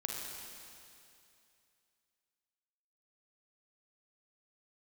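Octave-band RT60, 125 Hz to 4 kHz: 2.6, 2.5, 2.6, 2.6, 2.6, 2.6 seconds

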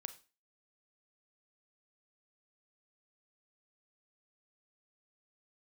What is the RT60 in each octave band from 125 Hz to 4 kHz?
0.25, 0.35, 0.35, 0.30, 0.35, 0.30 seconds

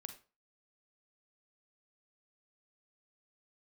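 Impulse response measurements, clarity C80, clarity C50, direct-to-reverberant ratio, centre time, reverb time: 15.5 dB, 9.5 dB, 7.0 dB, 11 ms, 0.35 s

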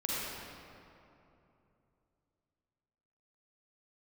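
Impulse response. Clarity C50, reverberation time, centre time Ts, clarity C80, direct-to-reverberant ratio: −6.0 dB, 2.9 s, 179 ms, −3.5 dB, −7.0 dB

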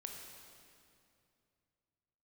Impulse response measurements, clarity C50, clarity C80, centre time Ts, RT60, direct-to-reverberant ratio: 2.5 dB, 3.5 dB, 82 ms, 2.5 s, 1.0 dB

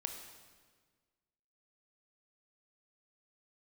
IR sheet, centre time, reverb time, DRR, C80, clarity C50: 36 ms, 1.5 s, 4.0 dB, 7.0 dB, 6.0 dB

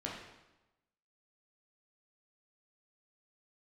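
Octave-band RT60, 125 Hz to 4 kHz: 1.1, 1.0, 1.0, 1.0, 0.90, 0.85 seconds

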